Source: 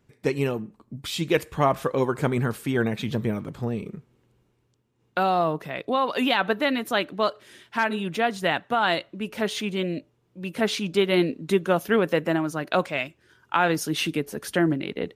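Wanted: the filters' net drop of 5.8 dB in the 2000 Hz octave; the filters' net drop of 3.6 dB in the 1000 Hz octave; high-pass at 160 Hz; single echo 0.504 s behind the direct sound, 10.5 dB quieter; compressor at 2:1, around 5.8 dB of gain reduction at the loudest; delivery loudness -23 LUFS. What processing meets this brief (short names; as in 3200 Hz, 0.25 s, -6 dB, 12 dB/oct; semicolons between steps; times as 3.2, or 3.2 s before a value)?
HPF 160 Hz; bell 1000 Hz -3.5 dB; bell 2000 Hz -6.5 dB; compressor 2:1, threshold -28 dBFS; echo 0.504 s -10.5 dB; gain +8 dB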